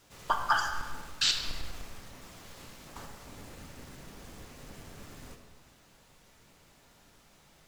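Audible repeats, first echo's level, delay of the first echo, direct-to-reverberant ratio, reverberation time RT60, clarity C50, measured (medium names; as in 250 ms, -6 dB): no echo, no echo, no echo, 3.0 dB, 1.5 s, 6.0 dB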